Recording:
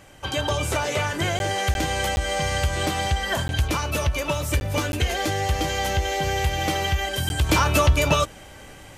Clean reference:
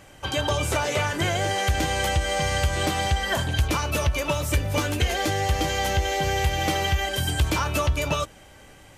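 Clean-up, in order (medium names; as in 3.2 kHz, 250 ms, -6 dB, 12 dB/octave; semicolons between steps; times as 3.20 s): interpolate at 1.39/1.74/2.16/3.48/4.60/4.92/7.29 s, 11 ms; gain correction -5.5 dB, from 7.49 s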